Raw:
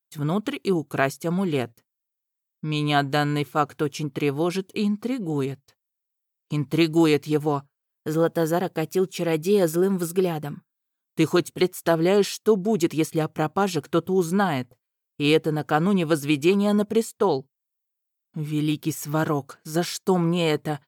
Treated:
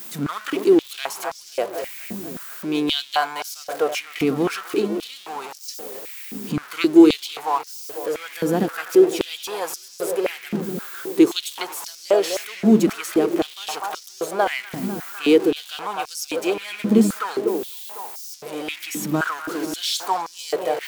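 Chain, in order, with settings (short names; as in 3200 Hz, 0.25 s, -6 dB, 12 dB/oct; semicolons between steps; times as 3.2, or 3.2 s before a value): zero-crossing step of -27.5 dBFS; darkening echo 0.249 s, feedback 74%, low-pass 2700 Hz, level -10.5 dB; stepped high-pass 3.8 Hz 220–5400 Hz; gain -2.5 dB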